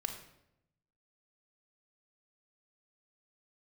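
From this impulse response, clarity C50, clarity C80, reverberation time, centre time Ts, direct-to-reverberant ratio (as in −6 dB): 7.0 dB, 10.0 dB, 0.80 s, 23 ms, 4.5 dB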